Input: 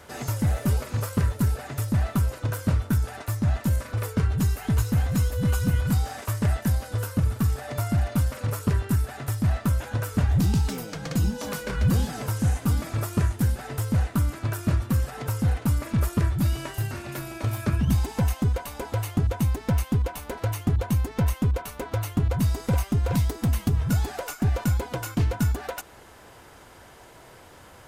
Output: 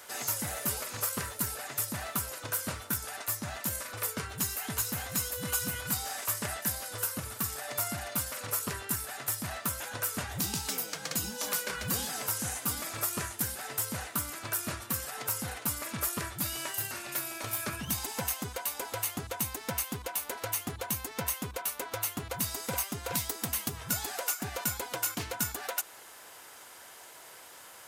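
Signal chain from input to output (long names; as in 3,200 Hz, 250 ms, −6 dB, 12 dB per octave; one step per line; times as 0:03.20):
high-pass filter 1,000 Hz 6 dB per octave
high-shelf EQ 6,400 Hz +10 dB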